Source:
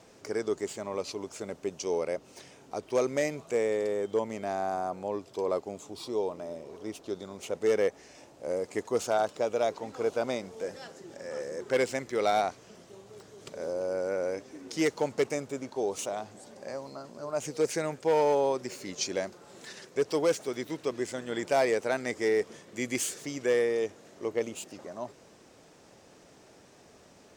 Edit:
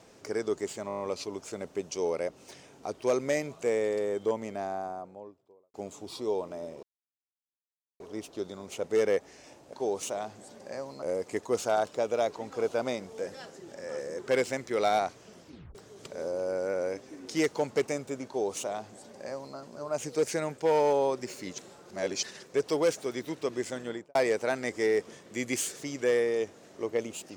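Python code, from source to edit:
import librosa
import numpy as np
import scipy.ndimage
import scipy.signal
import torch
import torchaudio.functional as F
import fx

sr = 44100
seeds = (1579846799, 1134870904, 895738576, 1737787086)

y = fx.studio_fade_out(x, sr, start_s=4.08, length_s=1.54)
y = fx.studio_fade_out(y, sr, start_s=21.23, length_s=0.34)
y = fx.edit(y, sr, fx.stutter(start_s=0.88, slice_s=0.02, count=7),
    fx.insert_silence(at_s=6.71, length_s=1.17),
    fx.tape_stop(start_s=12.84, length_s=0.33),
    fx.duplicate(start_s=15.69, length_s=1.29, to_s=8.44),
    fx.reverse_span(start_s=19.0, length_s=0.65), tone=tone)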